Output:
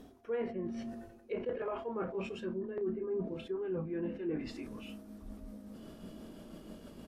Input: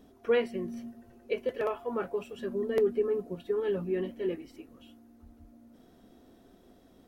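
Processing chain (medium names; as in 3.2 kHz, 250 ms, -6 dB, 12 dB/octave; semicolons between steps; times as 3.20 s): pitch bend over the whole clip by -2.5 st starting unshifted; low-pass that closes with the level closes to 1.6 kHz, closed at -28.5 dBFS; reverse; compression 6:1, threshold -45 dBFS, peak gain reduction 21 dB; reverse; doubling 32 ms -13 dB; on a send at -22 dB: reverberation RT60 0.60 s, pre-delay 3 ms; on the sum: decay stretcher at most 89 dB/s; trim +9 dB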